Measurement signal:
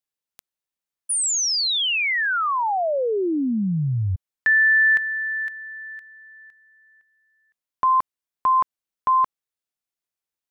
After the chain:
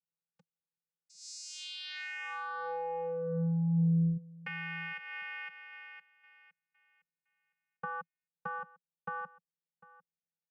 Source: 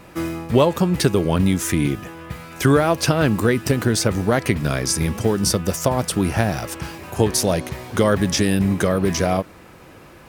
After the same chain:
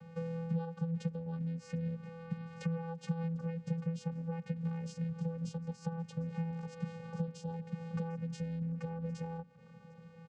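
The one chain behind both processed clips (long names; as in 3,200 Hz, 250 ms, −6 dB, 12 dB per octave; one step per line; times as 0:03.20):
downward compressor 16 to 1, threshold −27 dBFS
channel vocoder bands 8, square 166 Hz
on a send: single-tap delay 750 ms −20.5 dB
on the sum: level −4.5 dB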